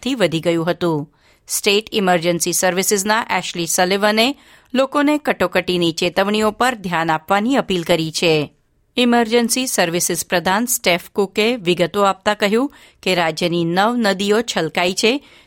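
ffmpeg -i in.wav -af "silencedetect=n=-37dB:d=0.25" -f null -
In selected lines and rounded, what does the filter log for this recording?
silence_start: 1.05
silence_end: 1.48 | silence_duration: 0.43
silence_start: 8.48
silence_end: 8.97 | silence_duration: 0.49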